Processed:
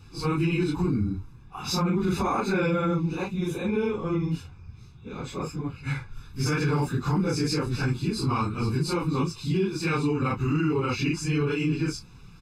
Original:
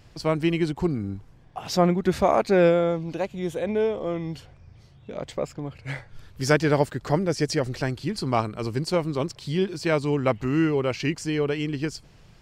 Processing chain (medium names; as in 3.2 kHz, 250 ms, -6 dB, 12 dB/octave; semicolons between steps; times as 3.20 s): phase randomisation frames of 100 ms; comb 0.8 ms, depth 98%; peak limiter -16 dBFS, peak gain reduction 11 dB; trim -1 dB